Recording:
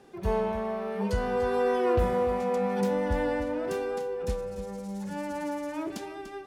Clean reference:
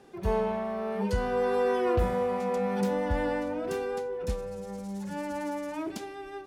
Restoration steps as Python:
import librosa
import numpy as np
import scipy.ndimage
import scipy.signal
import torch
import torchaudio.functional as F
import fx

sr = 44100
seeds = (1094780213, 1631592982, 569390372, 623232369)

y = fx.fix_echo_inverse(x, sr, delay_ms=293, level_db=-12.0)